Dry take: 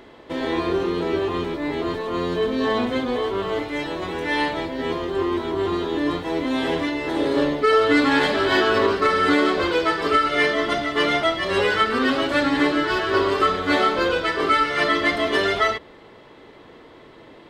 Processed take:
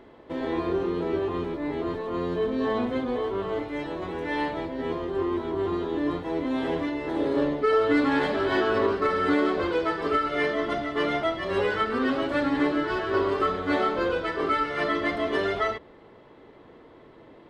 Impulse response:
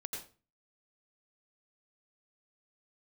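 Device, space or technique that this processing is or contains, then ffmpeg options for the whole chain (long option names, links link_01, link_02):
through cloth: -af "highshelf=frequency=2100:gain=-11,volume=-3.5dB"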